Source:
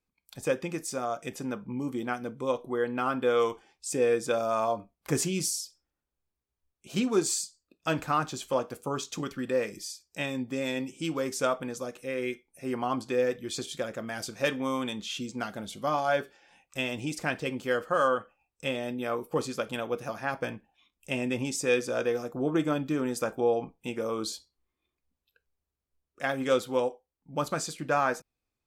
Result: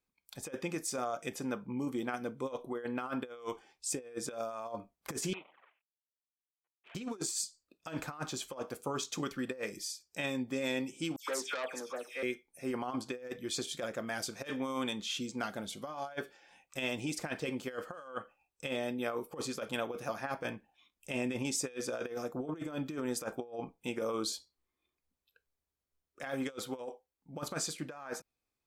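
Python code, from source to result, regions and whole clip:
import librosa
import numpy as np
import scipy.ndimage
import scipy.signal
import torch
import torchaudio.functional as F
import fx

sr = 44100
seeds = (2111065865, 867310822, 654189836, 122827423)

y = fx.chain(x, sr, fx.cvsd(bps=16000),
    fx.highpass(hz=740.0, slope=12),
    fx.env_flanger(rest_ms=8.5, full_db=-44.0), at=(5.33, 6.95))
y = fx.chain(y, sr, fx.highpass(hz=380.0, slope=12),
    fx.dispersion(late='lows', ms=124.0, hz=2400.0),
    fx.transformer_sat(knee_hz=2400.0), at=(11.16, 12.23))
y = fx.low_shelf(y, sr, hz=180.0, db=-6.0)
y = fx.notch(y, sr, hz=2800.0, q=27.0)
y = fx.over_compress(y, sr, threshold_db=-32.0, ratio=-0.5)
y = y * 10.0 ** (-4.0 / 20.0)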